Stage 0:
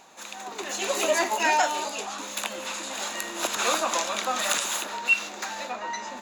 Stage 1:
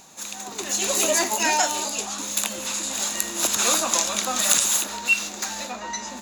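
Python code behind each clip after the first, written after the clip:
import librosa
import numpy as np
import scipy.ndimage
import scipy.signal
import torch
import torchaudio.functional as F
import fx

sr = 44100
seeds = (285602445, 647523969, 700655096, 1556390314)

y = fx.bass_treble(x, sr, bass_db=13, treble_db=12)
y = y * librosa.db_to_amplitude(-1.0)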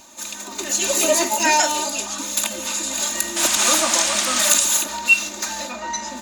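y = x + 0.95 * np.pad(x, (int(3.3 * sr / 1000.0), 0))[:len(x)]
y = fx.spec_paint(y, sr, seeds[0], shape='noise', start_s=3.36, length_s=1.14, low_hz=580.0, high_hz=9400.0, level_db=-24.0)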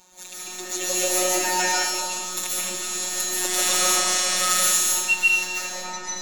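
y = fx.robotise(x, sr, hz=182.0)
y = fx.rev_freeverb(y, sr, rt60_s=0.97, hf_ratio=0.95, predelay_ms=100, drr_db=-6.5)
y = y * librosa.db_to_amplitude(-7.0)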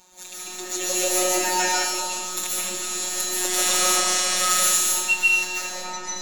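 y = fx.doubler(x, sr, ms=25.0, db=-11.5)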